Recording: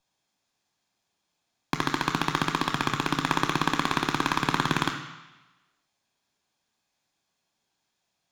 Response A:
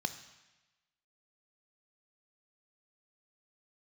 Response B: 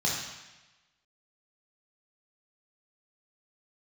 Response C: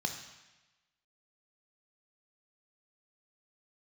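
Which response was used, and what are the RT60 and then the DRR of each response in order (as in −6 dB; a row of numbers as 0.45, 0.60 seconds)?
C; 1.1, 1.1, 1.1 seconds; 9.5, −4.0, 4.5 decibels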